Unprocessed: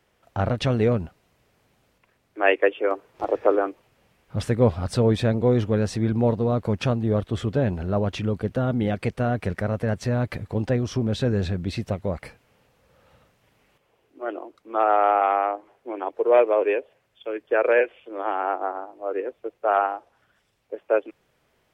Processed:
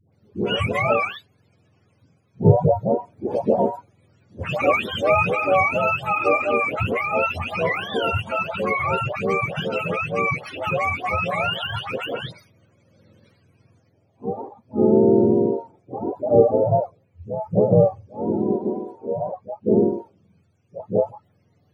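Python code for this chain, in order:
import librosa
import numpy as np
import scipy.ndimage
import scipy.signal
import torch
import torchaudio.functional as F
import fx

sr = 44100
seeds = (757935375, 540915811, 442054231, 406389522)

y = fx.octave_mirror(x, sr, pivot_hz=530.0)
y = fx.dispersion(y, sr, late='highs', ms=130.0, hz=800.0)
y = fx.lowpass(y, sr, hz=2800.0, slope=6, at=(19.15, 19.8))
y = y * 10.0 ** (4.0 / 20.0)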